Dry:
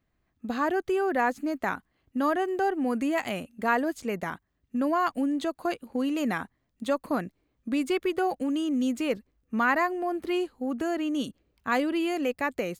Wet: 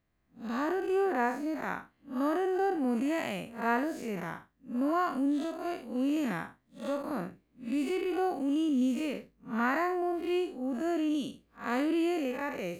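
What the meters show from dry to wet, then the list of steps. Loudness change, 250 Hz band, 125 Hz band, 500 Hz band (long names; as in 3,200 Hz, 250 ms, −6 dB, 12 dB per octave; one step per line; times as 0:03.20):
−3.0 dB, −2.0 dB, −2.0 dB, −3.5 dB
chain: spectrum smeared in time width 139 ms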